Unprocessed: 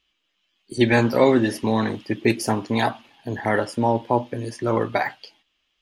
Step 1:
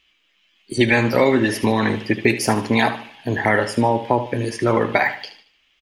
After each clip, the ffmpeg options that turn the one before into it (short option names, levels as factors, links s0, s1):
-af "equalizer=f=2200:w=1.7:g=7,acompressor=threshold=0.112:ratio=4,aecho=1:1:75|150|225|300:0.251|0.0929|0.0344|0.0127,volume=2"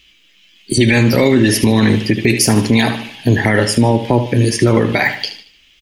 -filter_complex "[0:a]equalizer=f=970:t=o:w=2.5:g=-13,asplit=2[s0][s1];[s1]acompressor=threshold=0.0316:ratio=6,volume=0.75[s2];[s0][s2]amix=inputs=2:normalize=0,alimiter=level_in=4.22:limit=0.891:release=50:level=0:latency=1,volume=0.891"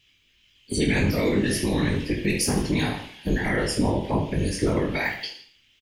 -af "bandreject=f=670:w=12,afftfilt=real='hypot(re,im)*cos(2*PI*random(0))':imag='hypot(re,im)*sin(2*PI*random(1))':win_size=512:overlap=0.75,aecho=1:1:20|45|76.25|115.3|164.1:0.631|0.398|0.251|0.158|0.1,volume=0.447"